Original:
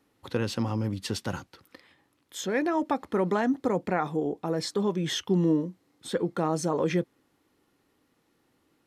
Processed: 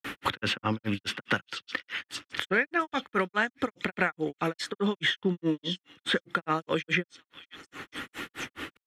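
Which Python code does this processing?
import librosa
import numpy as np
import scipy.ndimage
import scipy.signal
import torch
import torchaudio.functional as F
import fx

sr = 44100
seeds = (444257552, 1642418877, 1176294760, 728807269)

y = fx.band_shelf(x, sr, hz=2100.0, db=12.5, octaves=1.7)
y = fx.echo_stepped(y, sr, ms=524, hz=4000.0, octaves=0.7, feedback_pct=70, wet_db=-9.5)
y = fx.granulator(y, sr, seeds[0], grain_ms=167.0, per_s=4.8, spray_ms=100.0, spread_st=0)
y = fx.band_squash(y, sr, depth_pct=100)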